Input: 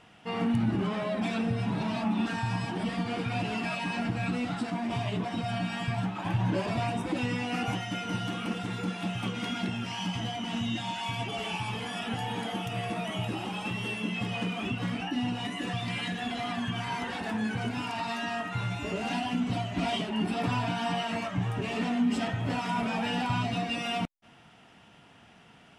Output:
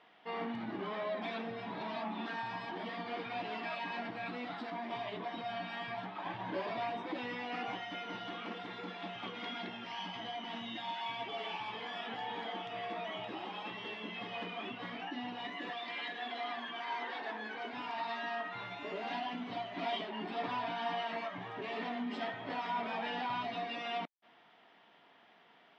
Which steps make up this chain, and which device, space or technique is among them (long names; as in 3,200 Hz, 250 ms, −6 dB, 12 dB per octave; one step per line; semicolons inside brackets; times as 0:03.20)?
0:15.70–0:17.73: high-pass filter 250 Hz 24 dB per octave
phone earpiece (loudspeaker in its box 460–3,800 Hz, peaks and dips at 530 Hz −3 dB, 810 Hz −3 dB, 1,400 Hz −6 dB, 2,700 Hz −9 dB)
level −1.5 dB